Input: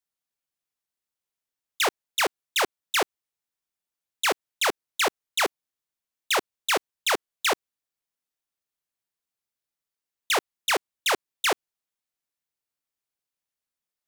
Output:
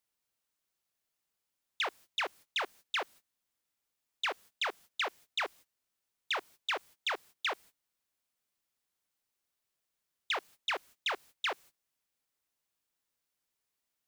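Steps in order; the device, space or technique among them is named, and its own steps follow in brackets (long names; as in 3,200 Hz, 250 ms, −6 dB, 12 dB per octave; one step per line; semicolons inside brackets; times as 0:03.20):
baby monitor (band-pass filter 440–3,000 Hz; downward compressor 10 to 1, threshold −31 dBFS, peak gain reduction 12 dB; white noise bed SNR 22 dB; noise gate −53 dBFS, range −22 dB)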